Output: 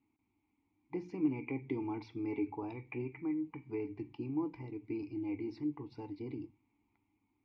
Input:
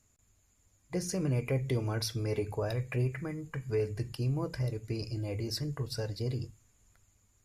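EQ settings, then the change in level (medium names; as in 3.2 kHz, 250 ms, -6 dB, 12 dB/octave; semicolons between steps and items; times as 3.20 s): dynamic bell 170 Hz, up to -5 dB, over -43 dBFS, Q 0.96; vowel filter u; distance through air 220 m; +10.5 dB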